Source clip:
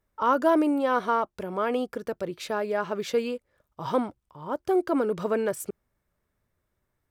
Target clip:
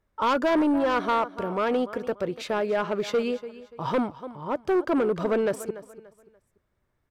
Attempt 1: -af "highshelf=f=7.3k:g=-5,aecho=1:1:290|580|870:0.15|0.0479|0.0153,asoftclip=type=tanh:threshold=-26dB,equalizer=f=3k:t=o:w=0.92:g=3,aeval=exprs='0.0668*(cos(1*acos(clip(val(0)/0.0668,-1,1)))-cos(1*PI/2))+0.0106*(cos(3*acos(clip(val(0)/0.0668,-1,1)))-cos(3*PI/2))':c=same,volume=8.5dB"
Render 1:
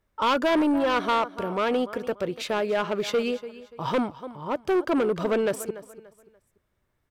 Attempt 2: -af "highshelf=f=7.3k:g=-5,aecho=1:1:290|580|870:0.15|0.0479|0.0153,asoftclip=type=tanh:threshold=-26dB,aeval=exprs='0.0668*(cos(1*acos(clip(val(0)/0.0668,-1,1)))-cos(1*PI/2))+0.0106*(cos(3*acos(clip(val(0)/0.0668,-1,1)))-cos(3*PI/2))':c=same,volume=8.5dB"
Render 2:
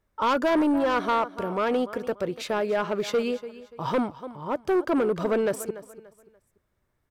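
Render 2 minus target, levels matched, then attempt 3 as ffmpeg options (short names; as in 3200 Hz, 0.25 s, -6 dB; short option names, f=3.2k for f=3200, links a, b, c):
8000 Hz band +3.5 dB
-af "highshelf=f=7.3k:g=-12,aecho=1:1:290|580|870:0.15|0.0479|0.0153,asoftclip=type=tanh:threshold=-26dB,aeval=exprs='0.0668*(cos(1*acos(clip(val(0)/0.0668,-1,1)))-cos(1*PI/2))+0.0106*(cos(3*acos(clip(val(0)/0.0668,-1,1)))-cos(3*PI/2))':c=same,volume=8.5dB"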